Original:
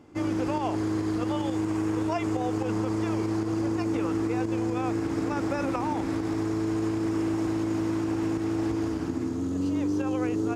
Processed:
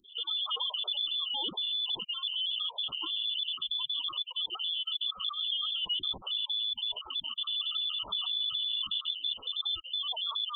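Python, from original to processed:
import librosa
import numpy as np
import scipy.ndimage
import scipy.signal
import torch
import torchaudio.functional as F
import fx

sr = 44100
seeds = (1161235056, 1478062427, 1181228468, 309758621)

p1 = fx.spec_dropout(x, sr, seeds[0], share_pct=52)
p2 = scipy.signal.sosfilt(scipy.signal.butter(2, 720.0, 'highpass', fs=sr, output='sos'), p1)
p3 = fx.spec_gate(p2, sr, threshold_db=-15, keep='strong')
p4 = fx.freq_invert(p3, sr, carrier_hz=3800)
p5 = fx.over_compress(p4, sr, threshold_db=-44.0, ratio=-0.5)
p6 = p4 + (p5 * librosa.db_to_amplitude(3.0))
p7 = scipy.signal.sosfilt(scipy.signal.cheby1(5, 1.0, [1300.0, 2900.0], 'bandstop', fs=sr, output='sos'), p6)
y = p7 * librosa.db_to_amplitude(4.0)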